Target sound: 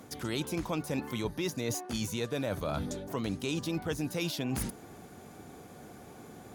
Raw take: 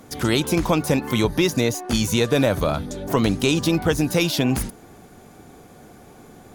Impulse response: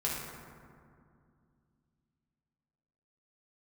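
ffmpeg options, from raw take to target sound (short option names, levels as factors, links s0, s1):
-af "highpass=59,areverse,acompressor=threshold=0.0447:ratio=6,areverse,volume=0.668"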